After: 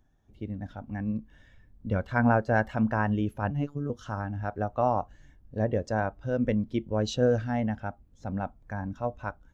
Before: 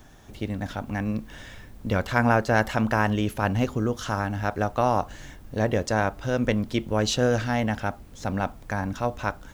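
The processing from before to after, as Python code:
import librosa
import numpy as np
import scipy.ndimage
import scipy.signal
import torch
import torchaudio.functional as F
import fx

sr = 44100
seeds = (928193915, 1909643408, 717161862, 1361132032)

y = fx.robotise(x, sr, hz=144.0, at=(3.5, 3.9))
y = fx.spectral_expand(y, sr, expansion=1.5)
y = y * 10.0 ** (-5.5 / 20.0)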